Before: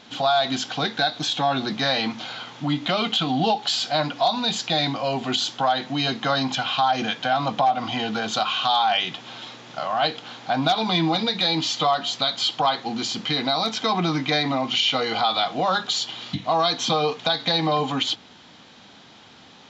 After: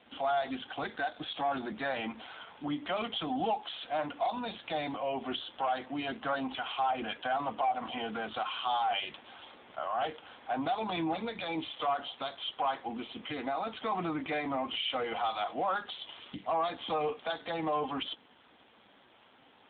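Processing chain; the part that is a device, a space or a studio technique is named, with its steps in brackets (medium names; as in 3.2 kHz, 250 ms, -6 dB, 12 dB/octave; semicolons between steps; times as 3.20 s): telephone (band-pass 270–3200 Hz; saturation -16 dBFS, distortion -17 dB; trim -6.5 dB; AMR-NB 7.4 kbps 8 kHz)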